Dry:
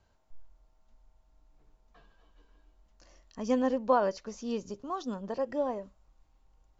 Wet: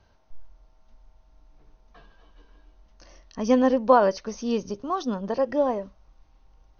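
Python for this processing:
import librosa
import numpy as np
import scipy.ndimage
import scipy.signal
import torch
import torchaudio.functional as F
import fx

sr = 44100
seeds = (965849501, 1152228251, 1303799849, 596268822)

y = fx.brickwall_lowpass(x, sr, high_hz=6500.0)
y = F.gain(torch.from_numpy(y), 8.0).numpy()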